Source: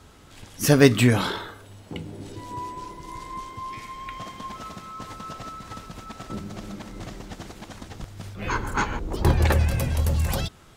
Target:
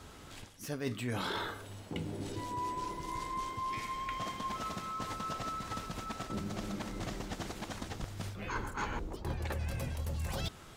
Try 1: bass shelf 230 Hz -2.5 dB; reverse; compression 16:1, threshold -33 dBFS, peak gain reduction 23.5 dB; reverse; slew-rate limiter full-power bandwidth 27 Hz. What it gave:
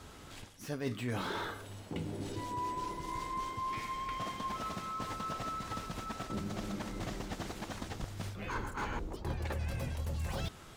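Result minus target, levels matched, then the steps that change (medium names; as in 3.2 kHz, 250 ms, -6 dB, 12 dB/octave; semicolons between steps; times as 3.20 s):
slew-rate limiter: distortion +10 dB
change: slew-rate limiter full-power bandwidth 62.5 Hz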